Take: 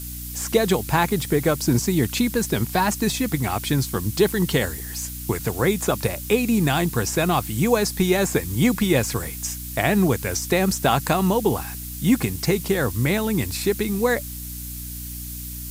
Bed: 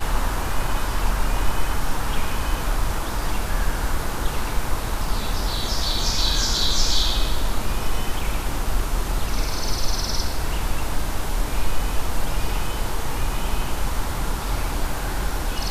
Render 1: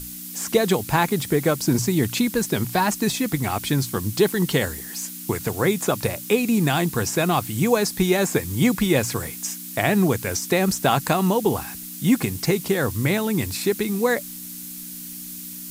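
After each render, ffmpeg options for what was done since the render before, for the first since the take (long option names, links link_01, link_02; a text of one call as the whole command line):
ffmpeg -i in.wav -af "bandreject=frequency=60:width_type=h:width=6,bandreject=frequency=120:width_type=h:width=6" out.wav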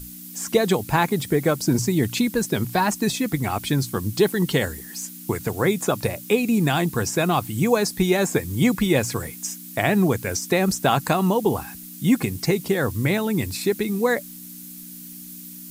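ffmpeg -i in.wav -af "afftdn=noise_reduction=6:noise_floor=-36" out.wav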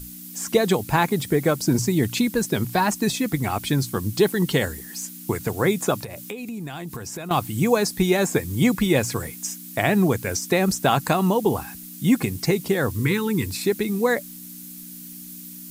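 ffmpeg -i in.wav -filter_complex "[0:a]asettb=1/sr,asplit=3[link_01][link_02][link_03];[link_01]atrim=end=6.024[link_04];[link_02]atrim=start=6.02:end=7.31,asetpts=PTS-STARTPTS,afade=type=in:duration=0.004:curve=qsin,afade=type=out:start_time=1.286:duration=0.004:curve=qsin,acompressor=threshold=-29dB:ratio=12:attack=3.2:release=140:knee=1:detection=peak[link_05];[link_03]atrim=start=7.306[link_06];[link_04][link_05]acrossfade=duration=0.004:curve1=hsin:curve2=qsin[link_07];[link_07][link_06]acrossfade=duration=0.004:curve1=qsin:curve2=hsin,asettb=1/sr,asplit=3[link_08][link_09][link_10];[link_08]atrim=end=12.994[link_11];[link_09]atrim=start=12.99:end=13.49,asetpts=PTS-STARTPTS,afade=type=in:duration=0.004:curve=qsin,afade=type=out:start_time=0.496:duration=0.004:curve=qsin,asuperstop=centerf=660:order=20:qfactor=1.8[link_12];[link_10]atrim=start=13.486[link_13];[link_11][link_12]acrossfade=duration=0.004:curve1=hsin:curve2=qsin[link_14];[link_14][link_13]acrossfade=duration=0.004:curve1=qsin:curve2=hsin" out.wav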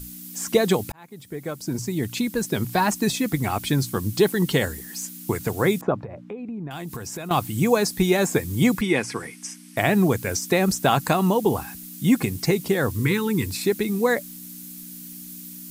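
ffmpeg -i in.wav -filter_complex "[0:a]asettb=1/sr,asplit=3[link_01][link_02][link_03];[link_01]atrim=end=5.814[link_04];[link_02]atrim=start=5.81:end=6.71,asetpts=PTS-STARTPTS,afade=type=in:duration=0.004:curve=qsin,afade=type=out:start_time=0.896:duration=0.004:curve=qsin,lowpass=1200[link_05];[link_03]atrim=start=6.706[link_06];[link_04][link_05]acrossfade=duration=0.004:curve1=hsin:curve2=qsin[link_07];[link_07][link_06]acrossfade=duration=0.004:curve1=qsin:curve2=hsin,asettb=1/sr,asplit=3[link_08][link_09][link_10];[link_08]atrim=end=8.814[link_11];[link_09]atrim=start=8.81:end=9.77,asetpts=PTS-STARTPTS,afade=type=in:duration=0.004:curve=qsin,afade=type=out:start_time=0.956:duration=0.004:curve=qsin,highpass=210,equalizer=frequency=580:width_type=q:width=4:gain=-9,equalizer=frequency=2100:width_type=q:width=4:gain=4,equalizer=frequency=3900:width_type=q:width=4:gain=-6,equalizer=frequency=7100:width_type=q:width=4:gain=-10,lowpass=frequency=9400:width=0.5412,lowpass=frequency=9400:width=1.3066[link_12];[link_10]atrim=start=9.766[link_13];[link_11][link_12]acrossfade=duration=0.004:curve1=hsin:curve2=qsin[link_14];[link_14][link_13]acrossfade=duration=0.004:curve1=qsin:curve2=hsin,asplit=2[link_15][link_16];[link_15]atrim=end=0.92,asetpts=PTS-STARTPTS,afade=type=out:start_time=0.916:duration=0.004:curve=hsin[link_17];[link_16]atrim=start=0.92,asetpts=PTS-STARTPTS,afade=type=in:duration=1.93[link_18];[link_17][link_18]concat=n=2:v=0:a=1" out.wav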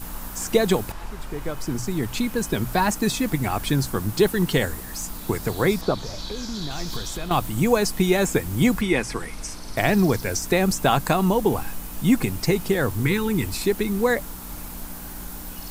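ffmpeg -i in.wav -i bed.wav -filter_complex "[1:a]volume=-13.5dB[link_01];[0:a][link_01]amix=inputs=2:normalize=0" out.wav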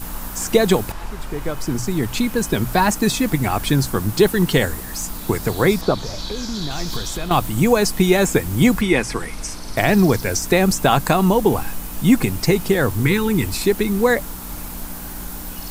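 ffmpeg -i in.wav -af "volume=4.5dB,alimiter=limit=-3dB:level=0:latency=1" out.wav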